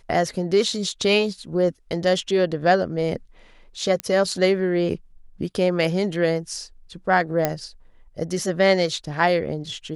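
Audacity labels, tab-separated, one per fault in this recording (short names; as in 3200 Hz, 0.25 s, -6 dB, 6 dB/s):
4.000000	4.000000	pop -11 dBFS
7.450000	7.450000	pop -6 dBFS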